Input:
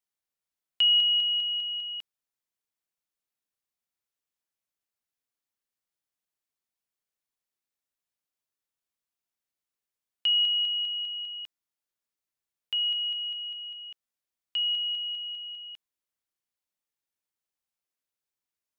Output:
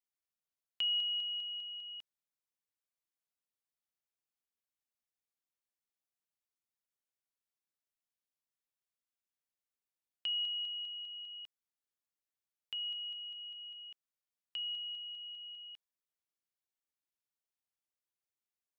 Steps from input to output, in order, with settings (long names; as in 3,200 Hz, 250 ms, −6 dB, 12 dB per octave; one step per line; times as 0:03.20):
dynamic equaliser 2,200 Hz, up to −6 dB, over −40 dBFS, Q 1.1
level −7.5 dB